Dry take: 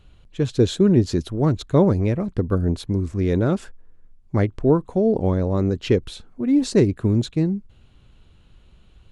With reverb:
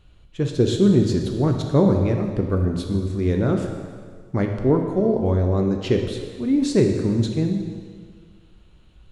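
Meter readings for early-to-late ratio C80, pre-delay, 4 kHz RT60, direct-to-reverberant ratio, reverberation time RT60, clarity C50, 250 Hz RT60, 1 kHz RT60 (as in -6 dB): 6.5 dB, 4 ms, 1.7 s, 3.0 dB, 1.8 s, 5.0 dB, 1.9 s, 1.8 s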